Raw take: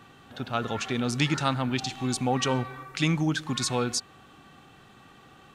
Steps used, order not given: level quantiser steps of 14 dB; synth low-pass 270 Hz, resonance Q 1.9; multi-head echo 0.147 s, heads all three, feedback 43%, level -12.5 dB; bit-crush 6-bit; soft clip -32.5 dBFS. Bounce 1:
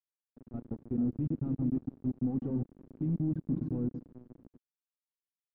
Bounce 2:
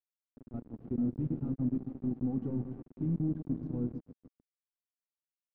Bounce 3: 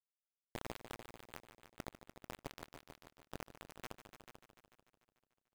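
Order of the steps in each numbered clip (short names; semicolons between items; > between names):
multi-head echo > level quantiser > soft clip > bit-crush > synth low-pass; level quantiser > soft clip > multi-head echo > bit-crush > synth low-pass; soft clip > synth low-pass > level quantiser > bit-crush > multi-head echo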